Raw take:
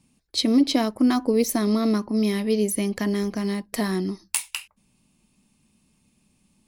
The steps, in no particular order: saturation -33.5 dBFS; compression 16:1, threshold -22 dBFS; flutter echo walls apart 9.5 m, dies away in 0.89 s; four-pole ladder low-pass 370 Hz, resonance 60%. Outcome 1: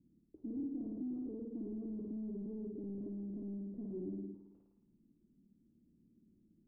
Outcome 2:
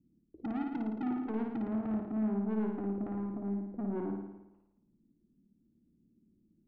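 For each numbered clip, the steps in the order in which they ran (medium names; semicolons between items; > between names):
compression > flutter echo > saturation > four-pole ladder low-pass; four-pole ladder low-pass > compression > saturation > flutter echo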